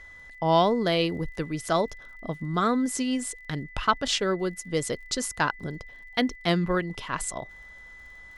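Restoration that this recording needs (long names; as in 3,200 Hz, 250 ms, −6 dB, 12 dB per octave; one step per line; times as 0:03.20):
click removal
notch filter 2,000 Hz, Q 30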